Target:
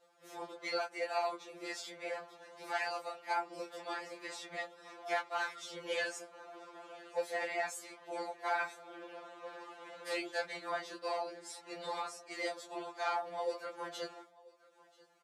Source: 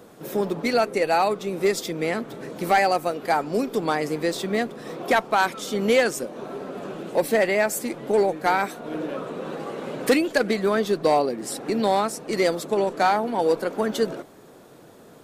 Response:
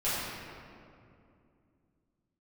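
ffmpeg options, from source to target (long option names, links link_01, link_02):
-filter_complex "[0:a]agate=range=-33dB:threshold=-37dB:ratio=3:detection=peak,acompressor=mode=upward:threshold=-39dB:ratio=2.5,flanger=delay=19.5:depth=7.2:speed=0.16,afftfilt=real='hypot(re,im)*cos(2*PI*random(0))':imag='hypot(re,im)*sin(2*PI*random(1))':win_size=512:overlap=0.75,highpass=680,lowpass=7900,asplit=2[link_01][link_02];[link_02]aecho=0:1:986:0.0708[link_03];[link_01][link_03]amix=inputs=2:normalize=0,afftfilt=real='re*2.83*eq(mod(b,8),0)':imag='im*2.83*eq(mod(b,8),0)':win_size=2048:overlap=0.75,volume=-1dB"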